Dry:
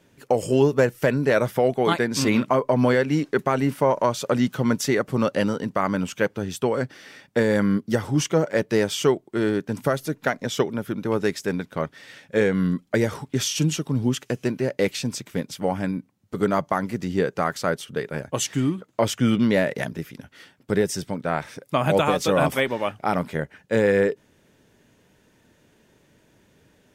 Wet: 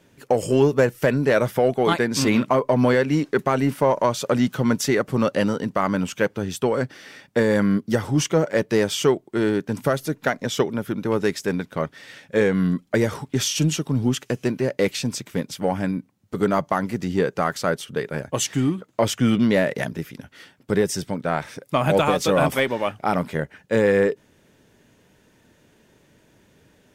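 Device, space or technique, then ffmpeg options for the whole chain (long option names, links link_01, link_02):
parallel distortion: -filter_complex "[0:a]asplit=2[link_01][link_02];[link_02]asoftclip=type=hard:threshold=-20.5dB,volume=-12dB[link_03];[link_01][link_03]amix=inputs=2:normalize=0"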